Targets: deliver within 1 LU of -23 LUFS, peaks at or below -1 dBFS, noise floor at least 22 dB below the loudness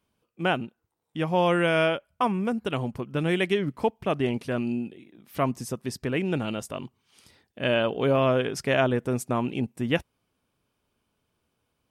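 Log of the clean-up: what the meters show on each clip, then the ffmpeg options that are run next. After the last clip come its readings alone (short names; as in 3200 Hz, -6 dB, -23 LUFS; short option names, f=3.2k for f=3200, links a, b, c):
loudness -26.5 LUFS; peak -10.0 dBFS; loudness target -23.0 LUFS
-> -af "volume=3.5dB"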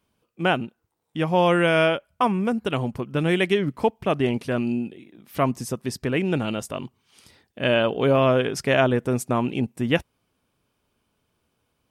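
loudness -23.0 LUFS; peak -6.5 dBFS; noise floor -74 dBFS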